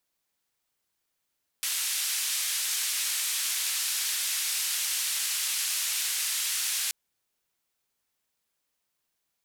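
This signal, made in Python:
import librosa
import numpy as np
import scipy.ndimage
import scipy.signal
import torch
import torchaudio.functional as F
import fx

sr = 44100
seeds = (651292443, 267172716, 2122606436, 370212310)

y = fx.band_noise(sr, seeds[0], length_s=5.28, low_hz=2100.0, high_hz=12000.0, level_db=-29.5)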